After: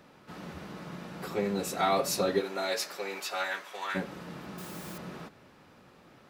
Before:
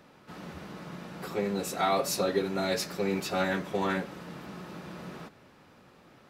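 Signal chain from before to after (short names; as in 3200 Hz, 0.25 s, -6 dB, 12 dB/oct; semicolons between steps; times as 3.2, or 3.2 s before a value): 2.4–3.94 HPF 380 Hz -> 1200 Hz 12 dB/oct; 4.58–4.98 requantised 8-bit, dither triangular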